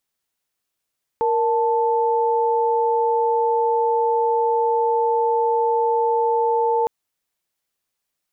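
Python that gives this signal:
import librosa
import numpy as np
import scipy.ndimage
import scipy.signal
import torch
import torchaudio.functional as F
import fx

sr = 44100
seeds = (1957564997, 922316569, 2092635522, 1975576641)

y = fx.chord(sr, length_s=5.66, notes=(70, 81), wave='sine', level_db=-19.0)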